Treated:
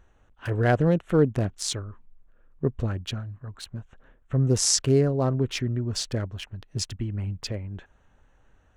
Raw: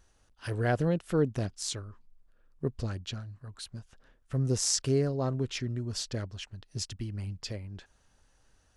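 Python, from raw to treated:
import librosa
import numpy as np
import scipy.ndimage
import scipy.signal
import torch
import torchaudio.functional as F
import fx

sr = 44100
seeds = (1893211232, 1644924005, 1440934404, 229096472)

y = fx.wiener(x, sr, points=9)
y = y * librosa.db_to_amplitude(6.5)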